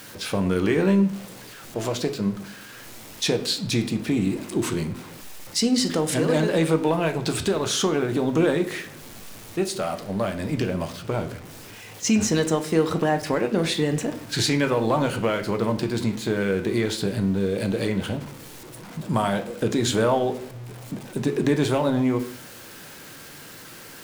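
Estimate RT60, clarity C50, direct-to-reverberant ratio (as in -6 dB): 0.60 s, 13.0 dB, 6.5 dB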